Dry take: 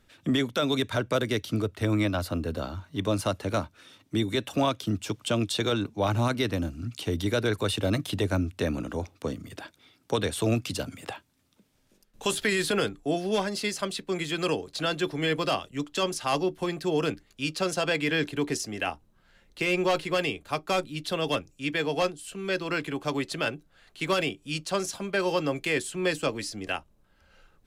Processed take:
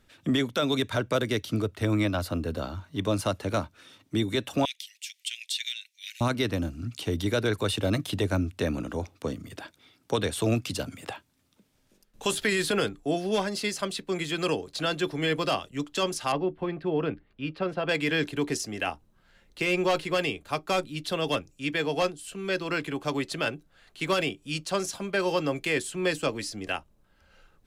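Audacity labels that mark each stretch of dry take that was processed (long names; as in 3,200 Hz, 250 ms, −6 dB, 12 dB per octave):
4.650000	6.210000	Butterworth high-pass 1,900 Hz 72 dB per octave
16.320000	17.890000	high-frequency loss of the air 450 metres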